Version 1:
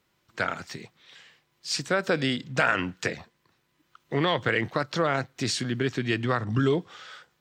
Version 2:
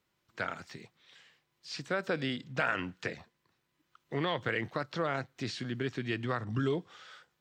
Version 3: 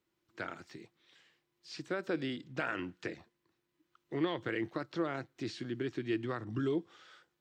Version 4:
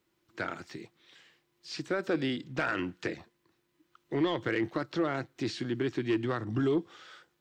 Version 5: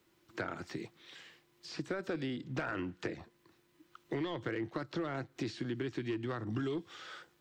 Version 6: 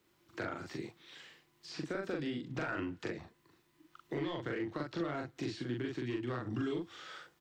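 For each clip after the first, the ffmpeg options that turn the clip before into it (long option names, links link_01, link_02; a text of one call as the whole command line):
ffmpeg -i in.wav -filter_complex "[0:a]acrossover=split=4800[link_01][link_02];[link_02]acompressor=threshold=-49dB:ratio=4:attack=1:release=60[link_03];[link_01][link_03]amix=inputs=2:normalize=0,volume=-7.5dB" out.wav
ffmpeg -i in.wav -af "equalizer=frequency=330:width_type=o:width=0.4:gain=12.5,volume=-6dB" out.wav
ffmpeg -i in.wav -af "asoftclip=type=tanh:threshold=-26dB,volume=6.5dB" out.wav
ffmpeg -i in.wav -filter_complex "[0:a]acrossover=split=110|1500[link_01][link_02][link_03];[link_01]acompressor=threshold=-55dB:ratio=4[link_04];[link_02]acompressor=threshold=-42dB:ratio=4[link_05];[link_03]acompressor=threshold=-54dB:ratio=4[link_06];[link_04][link_05][link_06]amix=inputs=3:normalize=0,volume=5dB" out.wav
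ffmpeg -i in.wav -filter_complex "[0:a]asplit=2[link_01][link_02];[link_02]adelay=41,volume=-2dB[link_03];[link_01][link_03]amix=inputs=2:normalize=0,volume=-2.5dB" out.wav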